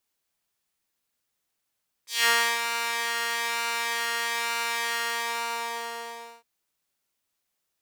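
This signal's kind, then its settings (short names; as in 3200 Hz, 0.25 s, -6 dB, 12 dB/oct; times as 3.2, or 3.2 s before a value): synth patch with pulse-width modulation A#4, oscillator 2 level -15 dB, sub -1 dB, filter highpass, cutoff 680 Hz, Q 1.3, filter envelope 3 oct, filter decay 0.21 s, filter sustain 35%, attack 0.167 s, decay 0.35 s, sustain -8.5 dB, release 1.47 s, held 2.89 s, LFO 1.1 Hz, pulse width 33%, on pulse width 5%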